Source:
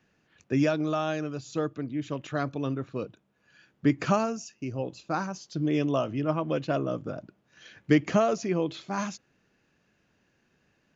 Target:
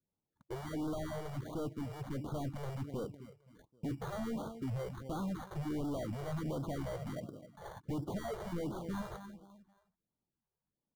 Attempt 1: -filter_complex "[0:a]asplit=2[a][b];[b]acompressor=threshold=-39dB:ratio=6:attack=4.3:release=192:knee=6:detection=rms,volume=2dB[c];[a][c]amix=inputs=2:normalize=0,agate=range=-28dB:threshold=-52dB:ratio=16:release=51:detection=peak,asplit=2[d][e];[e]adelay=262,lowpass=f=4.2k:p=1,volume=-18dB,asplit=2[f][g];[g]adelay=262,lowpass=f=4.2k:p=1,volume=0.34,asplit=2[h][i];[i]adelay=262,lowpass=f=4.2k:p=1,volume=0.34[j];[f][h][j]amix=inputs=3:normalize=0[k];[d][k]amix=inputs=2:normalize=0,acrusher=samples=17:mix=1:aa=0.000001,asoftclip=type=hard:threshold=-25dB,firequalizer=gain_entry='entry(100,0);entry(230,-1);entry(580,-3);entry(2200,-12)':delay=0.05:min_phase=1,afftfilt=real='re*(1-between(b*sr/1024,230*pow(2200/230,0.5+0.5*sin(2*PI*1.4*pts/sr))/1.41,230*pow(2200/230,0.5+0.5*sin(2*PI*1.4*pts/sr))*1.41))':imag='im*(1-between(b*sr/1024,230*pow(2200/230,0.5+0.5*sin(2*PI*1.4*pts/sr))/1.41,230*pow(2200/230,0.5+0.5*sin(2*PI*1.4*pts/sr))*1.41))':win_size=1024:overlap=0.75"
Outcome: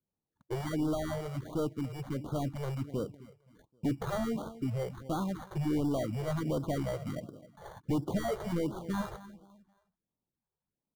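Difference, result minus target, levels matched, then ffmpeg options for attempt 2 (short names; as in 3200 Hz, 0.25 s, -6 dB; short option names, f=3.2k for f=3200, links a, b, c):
hard clip: distortion -4 dB
-filter_complex "[0:a]asplit=2[a][b];[b]acompressor=threshold=-39dB:ratio=6:attack=4.3:release=192:knee=6:detection=rms,volume=2dB[c];[a][c]amix=inputs=2:normalize=0,agate=range=-28dB:threshold=-52dB:ratio=16:release=51:detection=peak,asplit=2[d][e];[e]adelay=262,lowpass=f=4.2k:p=1,volume=-18dB,asplit=2[f][g];[g]adelay=262,lowpass=f=4.2k:p=1,volume=0.34,asplit=2[h][i];[i]adelay=262,lowpass=f=4.2k:p=1,volume=0.34[j];[f][h][j]amix=inputs=3:normalize=0[k];[d][k]amix=inputs=2:normalize=0,acrusher=samples=17:mix=1:aa=0.000001,asoftclip=type=hard:threshold=-33.5dB,firequalizer=gain_entry='entry(100,0);entry(230,-1);entry(580,-3);entry(2200,-12)':delay=0.05:min_phase=1,afftfilt=real='re*(1-between(b*sr/1024,230*pow(2200/230,0.5+0.5*sin(2*PI*1.4*pts/sr))/1.41,230*pow(2200/230,0.5+0.5*sin(2*PI*1.4*pts/sr))*1.41))':imag='im*(1-between(b*sr/1024,230*pow(2200/230,0.5+0.5*sin(2*PI*1.4*pts/sr))/1.41,230*pow(2200/230,0.5+0.5*sin(2*PI*1.4*pts/sr))*1.41))':win_size=1024:overlap=0.75"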